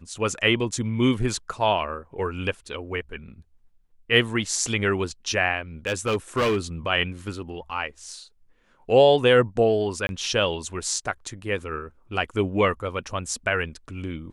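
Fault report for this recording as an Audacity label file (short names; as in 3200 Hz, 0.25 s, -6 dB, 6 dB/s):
5.870000	6.570000	clipped -18.5 dBFS
10.070000	10.090000	gap 21 ms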